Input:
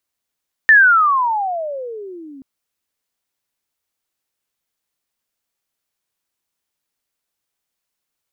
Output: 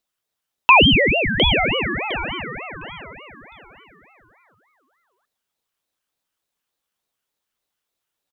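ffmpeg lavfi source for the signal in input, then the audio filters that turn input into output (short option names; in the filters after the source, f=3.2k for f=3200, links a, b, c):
-f lavfi -i "aevalsrc='pow(10,(-4.5-30*t/1.73)/20)*sin(2*PI*1810*1.73/(-33.5*log(2)/12)*(exp(-33.5*log(2)/12*t/1.73)-1))':d=1.73:s=44100"
-filter_complex "[0:a]equalizer=f=2.2k:t=o:w=0.38:g=10,asplit=2[a][b];[b]adelay=708,lowpass=f=2k:p=1,volume=-4dB,asplit=2[c][d];[d]adelay=708,lowpass=f=2k:p=1,volume=0.34,asplit=2[e][f];[f]adelay=708,lowpass=f=2k:p=1,volume=0.34,asplit=2[g][h];[h]adelay=708,lowpass=f=2k:p=1,volume=0.34[i];[c][e][g][i]amix=inputs=4:normalize=0[j];[a][j]amix=inputs=2:normalize=0,aeval=exprs='val(0)*sin(2*PI*1200*n/s+1200*0.45/3.4*sin(2*PI*3.4*n/s))':c=same"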